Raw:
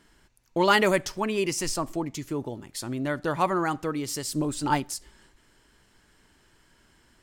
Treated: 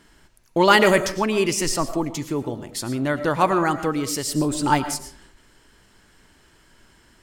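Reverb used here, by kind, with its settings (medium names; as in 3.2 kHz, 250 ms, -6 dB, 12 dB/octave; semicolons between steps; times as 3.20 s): algorithmic reverb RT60 0.51 s, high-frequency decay 0.5×, pre-delay 70 ms, DRR 10.5 dB; trim +5.5 dB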